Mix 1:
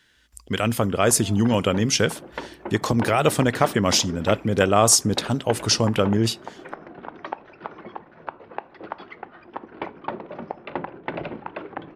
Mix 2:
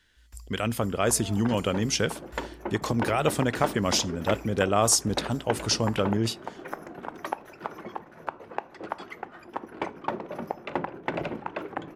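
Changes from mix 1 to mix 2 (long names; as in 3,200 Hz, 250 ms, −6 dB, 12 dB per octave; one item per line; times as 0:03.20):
speech −5.5 dB
first sound +9.5 dB
second sound: remove inverse Chebyshev low-pass filter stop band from 8,100 Hz, stop band 40 dB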